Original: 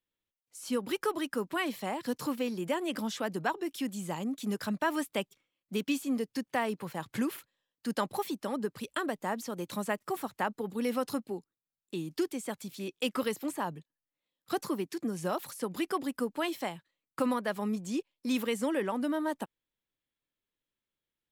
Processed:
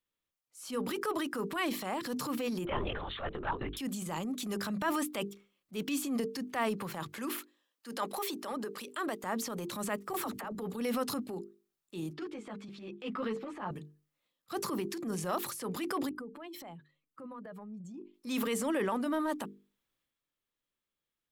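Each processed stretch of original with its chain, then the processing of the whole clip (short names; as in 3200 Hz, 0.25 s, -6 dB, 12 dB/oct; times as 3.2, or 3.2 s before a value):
2.65–3.77 HPF 320 Hz 24 dB/oct + LPC vocoder at 8 kHz whisper
7.08–9.24 HPF 210 Hz 24 dB/oct + low shelf 270 Hz -7.5 dB
10.13–10.55 negative-ratio compressor -34 dBFS, ratio -0.5 + dispersion lows, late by 41 ms, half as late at 440 Hz
12.13–13.71 LPF 2700 Hz + ensemble effect
16.09–18.14 spectral contrast raised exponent 1.6 + compressor 3:1, threshold -45 dBFS
whole clip: bell 1200 Hz +5.5 dB 0.23 oct; notches 50/100/150/200/250/300/350/400/450 Hz; transient shaper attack -8 dB, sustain +6 dB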